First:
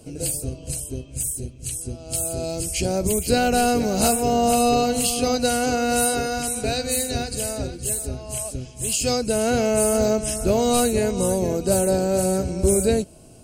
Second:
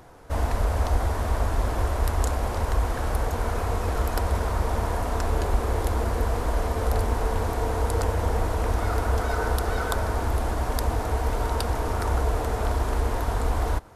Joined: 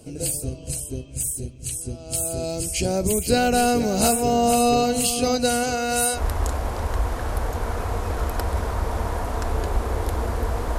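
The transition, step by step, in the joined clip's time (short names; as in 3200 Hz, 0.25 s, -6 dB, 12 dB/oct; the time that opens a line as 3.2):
first
5.63–6.21 bell 280 Hz -6.5 dB 1.5 oct
6.17 switch to second from 1.95 s, crossfade 0.08 s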